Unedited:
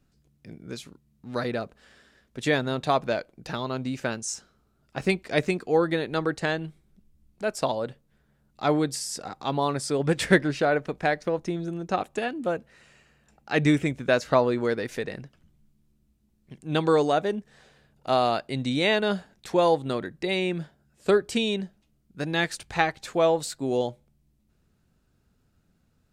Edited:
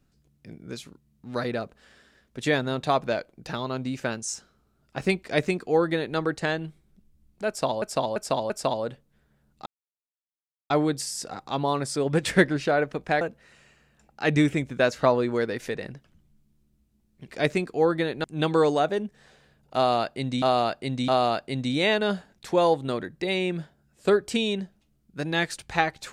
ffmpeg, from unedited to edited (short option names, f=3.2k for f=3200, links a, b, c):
-filter_complex "[0:a]asplit=10[a][b][c][d][e][f][g][h][i][j];[a]atrim=end=7.822[k];[b]atrim=start=7.478:end=7.822[l];[c]atrim=start=7.478:end=7.822[m];[d]atrim=start=7.478:end=8.64,asetpts=PTS-STARTPTS,afade=t=out:st=1.158:d=0.004:c=hsin,apad=pad_dur=1.04[n];[e]atrim=start=8.64:end=11.152,asetpts=PTS-STARTPTS,afade=t=in:d=0.004:c=hsin[o];[f]atrim=start=12.498:end=16.572[p];[g]atrim=start=5.208:end=6.172[q];[h]atrim=start=16.568:end=18.752[r];[i]atrim=start=18.088:end=18.752[s];[j]atrim=start=18.088[t];[k][l]acrossfade=d=0.004:c1=hsin:c2=hsin[u];[u][m]acrossfade=d=0.004:c1=hsin:c2=hsin[v];[n][o]concat=n=2:v=0:a=1[w];[v][w]acrossfade=d=0.004:c1=hsin:c2=hsin[x];[x][p]acrossfade=d=0.004:c1=hsin:c2=hsin[y];[y][q]acrossfade=d=0.004:c1=hsin:c2=hsin[z];[z][r]acrossfade=d=0.004:c1=hsin:c2=hsin[aa];[aa][s]acrossfade=d=0.004:c1=hsin:c2=hsin[ab];[ab][t]acrossfade=d=0.004:c1=hsin:c2=hsin"